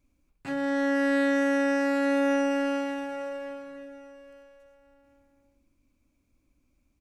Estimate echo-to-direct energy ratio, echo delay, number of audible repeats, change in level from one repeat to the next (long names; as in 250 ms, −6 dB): −17.0 dB, 822 ms, 2, −7.0 dB